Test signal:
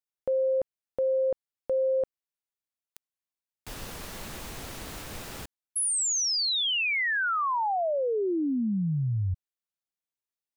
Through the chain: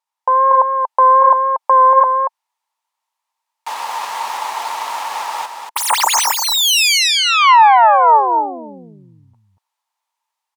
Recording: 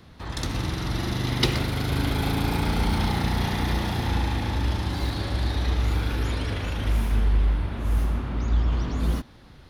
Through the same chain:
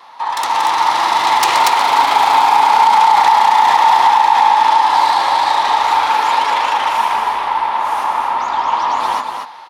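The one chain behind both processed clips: self-modulated delay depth 0.29 ms; high shelf 12000 Hz -11 dB; notch 1500 Hz, Q 11; AGC gain up to 4 dB; vibrato 2.6 Hz 30 cents; resonant high-pass 910 Hz, resonance Q 8.9; echo 0.235 s -6 dB; maximiser +10.5 dB; gain -1 dB

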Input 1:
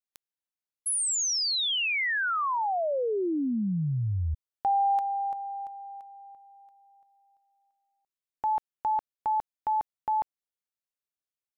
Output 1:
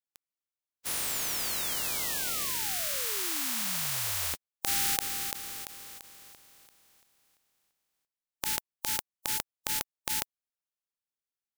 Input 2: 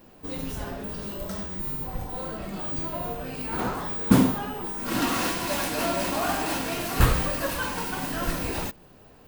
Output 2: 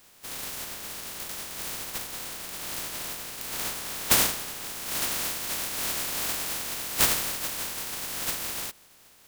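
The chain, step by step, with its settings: spectral contrast lowered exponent 0.12; gain -3.5 dB

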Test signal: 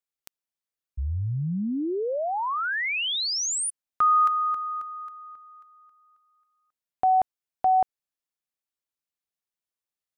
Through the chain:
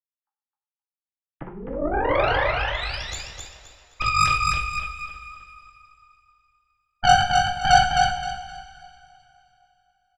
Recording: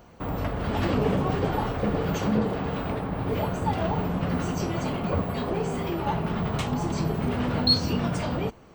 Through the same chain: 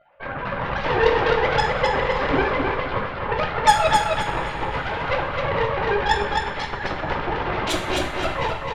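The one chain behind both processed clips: sine-wave speech; LPF 3000 Hz 12 dB/oct; dynamic EQ 510 Hz, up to +4 dB, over -33 dBFS, Q 1.1; in parallel at -2 dB: compressor 5:1, threshold -31 dBFS; on the sum: chorus voices 2, 0.59 Hz, delay 14 ms, depth 4.1 ms; soft clip -12 dBFS; added harmonics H 3 -12 dB, 4 -13 dB, 6 -9 dB, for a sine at -12 dBFS; feedback echo 0.261 s, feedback 28%, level -4 dB; two-slope reverb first 0.51 s, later 3 s, from -17 dB, DRR 2 dB; gain +3 dB

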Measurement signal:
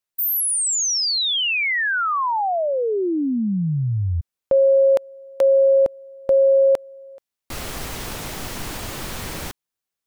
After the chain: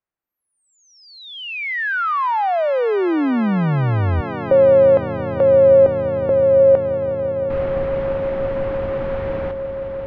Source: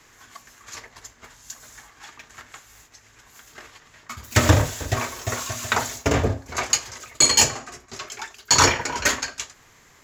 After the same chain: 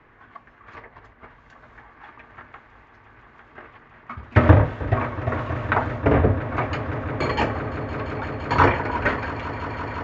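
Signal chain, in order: Bessel low-pass 1500 Hz, order 4; swelling echo 0.171 s, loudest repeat 8, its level -17.5 dB; gain +3.5 dB

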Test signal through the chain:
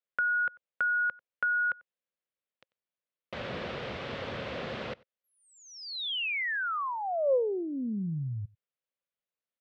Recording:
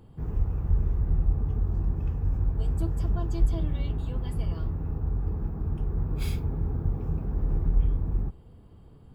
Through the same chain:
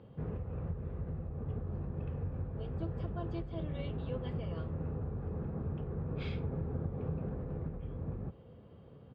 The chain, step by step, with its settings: compressor, threshold -26 dBFS; speaker cabinet 110–3600 Hz, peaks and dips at 310 Hz -4 dB, 530 Hz +9 dB, 880 Hz -4 dB; outdoor echo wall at 16 m, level -25 dB; Doppler distortion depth 0.1 ms

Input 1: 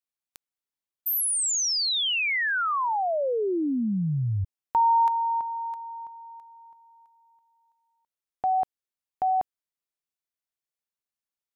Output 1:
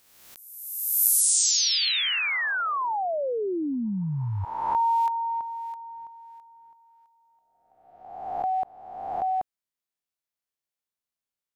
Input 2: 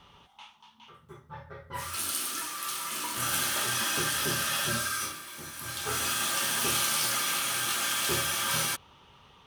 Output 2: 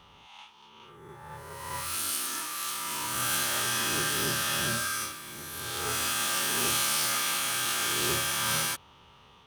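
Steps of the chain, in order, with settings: spectral swells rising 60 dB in 1.30 s; gain -2.5 dB

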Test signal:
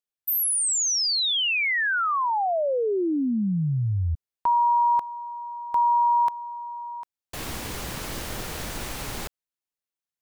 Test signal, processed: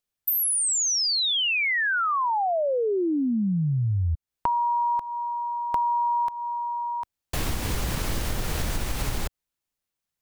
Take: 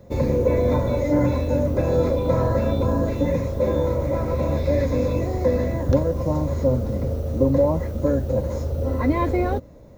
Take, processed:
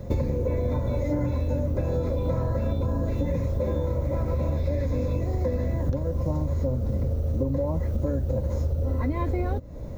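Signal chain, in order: low shelf 130 Hz +10.5 dB; compressor 10:1, threshold -28 dBFS; gain +5.5 dB

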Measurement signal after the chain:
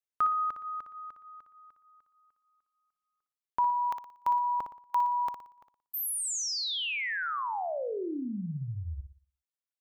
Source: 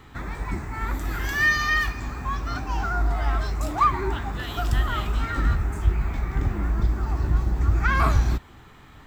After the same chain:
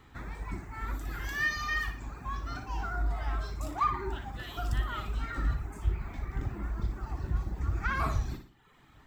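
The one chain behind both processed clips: reverb removal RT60 0.82 s; flutter echo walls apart 10.1 m, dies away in 0.43 s; gain -8.5 dB

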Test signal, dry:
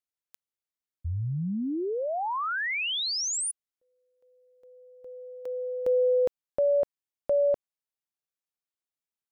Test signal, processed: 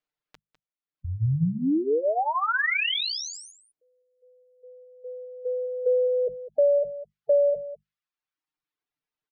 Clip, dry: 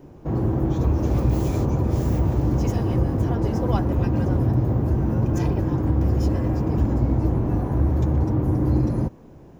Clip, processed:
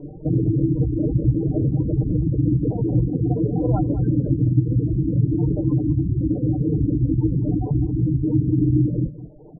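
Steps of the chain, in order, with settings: notches 50/100/150/200 Hz; spectral gate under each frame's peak -15 dB strong; reverb removal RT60 0.98 s; dynamic EQ 1000 Hz, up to -4 dB, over -48 dBFS, Q 1.9; comb 6.6 ms, depth 79%; in parallel at +3 dB: compressor, threshold -30 dBFS; on the sum: air absorption 200 m; echo 0.202 s -15 dB

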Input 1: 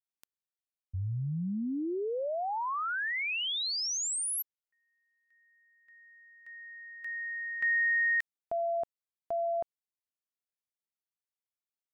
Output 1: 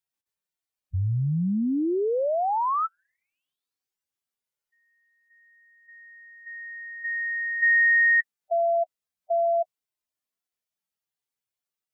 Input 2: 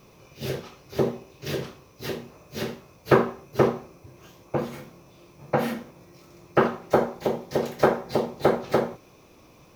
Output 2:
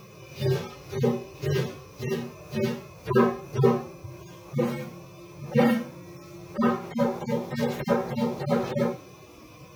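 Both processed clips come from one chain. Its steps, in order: median-filter separation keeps harmonic; gain +8.5 dB

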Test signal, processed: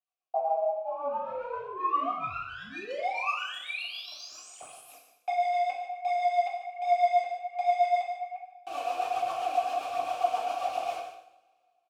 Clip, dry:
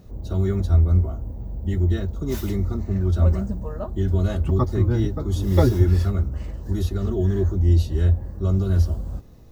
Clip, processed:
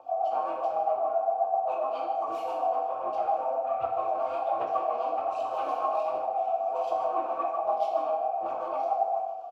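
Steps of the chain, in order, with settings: high shelf 4300 Hz +7.5 dB; comb 4.7 ms, depth 89%; in parallel at +1.5 dB: compressor, threshold -23 dBFS; on the sum: hard clip -19 dBFS; ring modulator 720 Hz; phaser 1.3 Hz, delay 4.6 ms, feedback 58%; vowel filter a; rotary speaker horn 7.5 Hz; on a send: echo 0.149 s -12 dB; on the sum: two-slope reverb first 0.68 s, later 2.3 s, from -25 dB, DRR -1 dB

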